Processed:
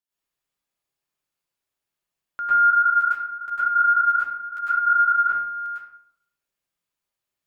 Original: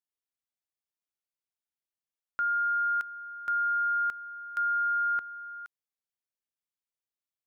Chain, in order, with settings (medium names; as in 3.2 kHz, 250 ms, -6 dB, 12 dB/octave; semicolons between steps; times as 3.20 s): reverberation RT60 0.70 s, pre-delay 97 ms, DRR -11 dB; 2.70–5.35 s: three-phase chorus